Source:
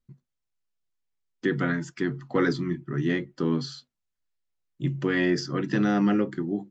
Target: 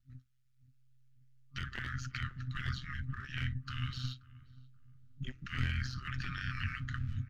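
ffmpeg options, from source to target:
-filter_complex "[0:a]asetrate=40517,aresample=44100,asplit=2[a][b];[b]aeval=exprs='sgn(val(0))*max(abs(val(0))-0.00596,0)':c=same,volume=-8.5dB[c];[a][c]amix=inputs=2:normalize=0,afftfilt=real='re*(1-between(b*sr/4096,130,1200))':imag='im*(1-between(b*sr/4096,130,1200))':win_size=4096:overlap=0.75,aeval=exprs='clip(val(0),-1,0.075)':c=same,acompressor=threshold=-34dB:ratio=6,afftfilt=real='re*lt(hypot(re,im),0.0447)':imag='im*lt(hypot(re,im),0.0447)':win_size=1024:overlap=0.75,acrossover=split=2900[d][e];[e]acompressor=threshold=-49dB:ratio=4:attack=1:release=60[f];[d][f]amix=inputs=2:normalize=0,tremolo=f=130:d=0.71,highshelf=f=4.9k:g=-6,asplit=2[g][h];[h]adelay=530,lowpass=f=990:p=1,volume=-18.5dB,asplit=2[i][j];[j]adelay=530,lowpass=f=990:p=1,volume=0.37,asplit=2[k][l];[l]adelay=530,lowpass=f=990:p=1,volume=0.37[m];[g][i][k][m]amix=inputs=4:normalize=0,asubboost=boost=7:cutoff=240,volume=8dB"

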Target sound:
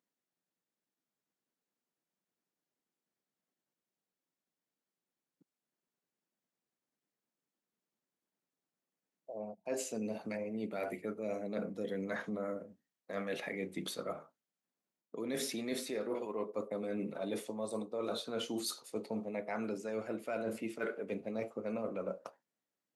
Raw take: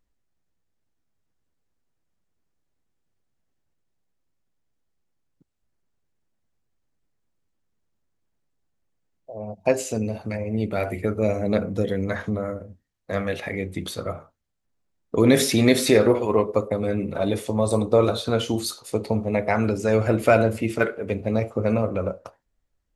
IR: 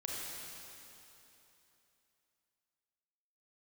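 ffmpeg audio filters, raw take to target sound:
-af "highpass=f=180:w=0.5412,highpass=f=180:w=1.3066,areverse,acompressor=threshold=-27dB:ratio=16,areverse,volume=-7dB"

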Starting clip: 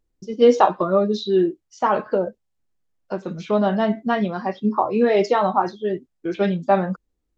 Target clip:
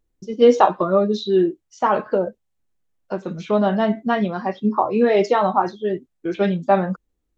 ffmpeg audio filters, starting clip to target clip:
-af "equalizer=f=4.9k:w=4.5:g=-3.5,volume=1dB"

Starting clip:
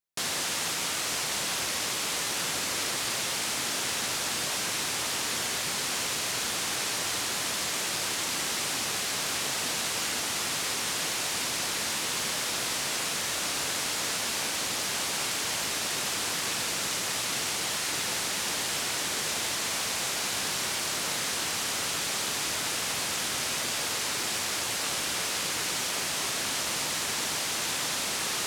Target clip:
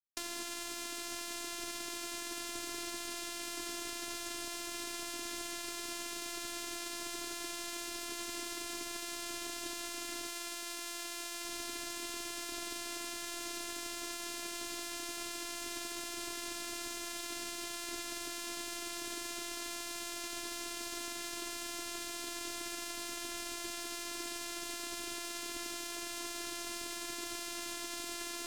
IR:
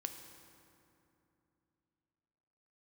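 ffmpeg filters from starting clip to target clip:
-filter_complex "[0:a]asettb=1/sr,asplit=3[a][b][c];[a]atrim=end=10.294[d];[b]atrim=start=10.29:end=11.45,asetpts=PTS-STARTPTS,afade=t=in:d=0.004:c=qsin,afade=t=out:st=1.156:d=0.004:c=qsin,lowshelf=f=240:g=-10.5[e];[c]atrim=start=11.446[f];[d][e]acrossfade=d=0.004:c1=hsin:c2=qsin[g];[g][f]acrossfade=d=0.004:c1=qsin:c2=hsin,acrossover=split=370[h][i];[i]acompressor=threshold=-42dB:ratio=6[j];[h][j]amix=inputs=2:normalize=0,afftfilt=real='hypot(re,im)*cos(PI*b)':imag='0':win_size=512:overlap=0.75,aeval=exprs='sgn(val(0))*max(abs(val(0))-0.00178,0)':c=same,volume=5dB"

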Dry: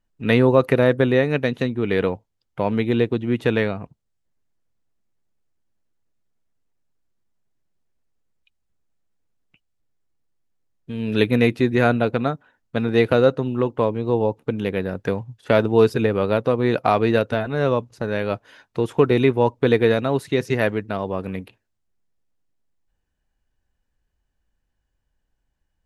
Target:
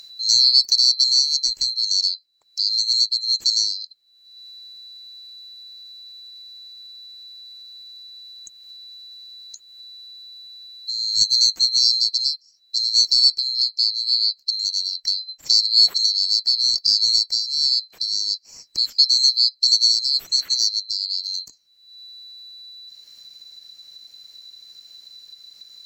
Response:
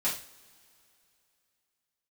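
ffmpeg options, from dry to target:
-filter_complex "[0:a]afftfilt=real='real(if(lt(b,736),b+184*(1-2*mod(floor(b/184),2)),b),0)':imag='imag(if(lt(b,736),b+184*(1-2*mod(floor(b/184),2)),b),0)':win_size=2048:overlap=0.75,acrossover=split=970[a][b];[a]acrusher=samples=31:mix=1:aa=0.000001[c];[c][b]amix=inputs=2:normalize=0,acompressor=mode=upward:threshold=-22dB:ratio=2.5"

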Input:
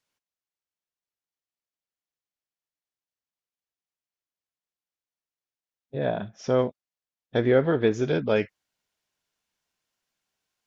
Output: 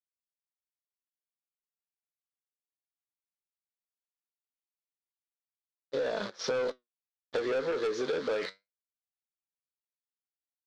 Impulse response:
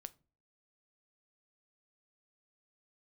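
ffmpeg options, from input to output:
-filter_complex "[0:a]asplit=2[a][b];[b]alimiter=limit=-20.5dB:level=0:latency=1:release=52,volume=0dB[c];[a][c]amix=inputs=2:normalize=0,acrusher=bits=7:dc=4:mix=0:aa=0.000001,areverse,acompressor=mode=upward:threshold=-22dB:ratio=2.5,areverse,highpass=460,equalizer=f=480:t=q:w=4:g=8,equalizer=f=720:t=q:w=4:g=-9,equalizer=f=1.2k:t=q:w=4:g=4,equalizer=f=2.6k:t=q:w=4:g=-7,equalizer=f=4.1k:t=q:w=4:g=7,lowpass=f=5.4k:w=0.5412,lowpass=f=5.4k:w=1.3066,asoftclip=type=tanh:threshold=-21.5dB,flanger=delay=1.9:depth=9.9:regen=69:speed=0.19:shape=sinusoidal,acompressor=threshold=-36dB:ratio=6,volume=7dB"

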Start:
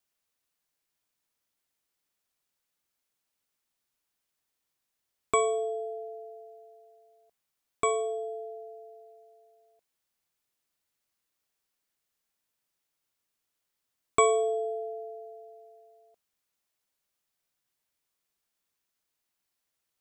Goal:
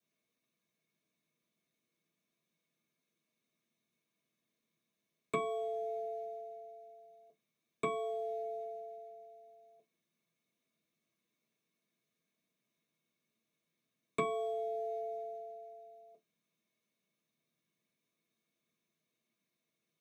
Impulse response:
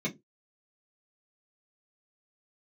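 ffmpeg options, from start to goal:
-filter_complex "[0:a]acrossover=split=410|2600[a][b][c];[a]acompressor=threshold=-46dB:ratio=4[d];[b]acompressor=threshold=-40dB:ratio=4[e];[c]acompressor=threshold=-43dB:ratio=4[f];[d][e][f]amix=inputs=3:normalize=0,asplit=2[g][h];[h]acrusher=bits=4:mode=log:mix=0:aa=0.000001,volume=-8.5dB[i];[g][i]amix=inputs=2:normalize=0[j];[1:a]atrim=start_sample=2205[k];[j][k]afir=irnorm=-1:irlink=0,volume=-7.5dB"

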